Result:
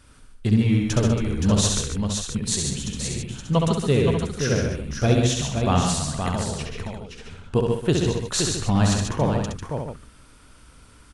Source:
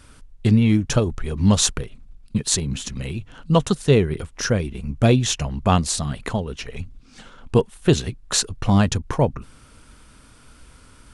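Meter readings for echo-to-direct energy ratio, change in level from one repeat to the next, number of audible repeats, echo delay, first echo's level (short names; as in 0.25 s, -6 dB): 1.0 dB, no steady repeat, 7, 67 ms, -4.0 dB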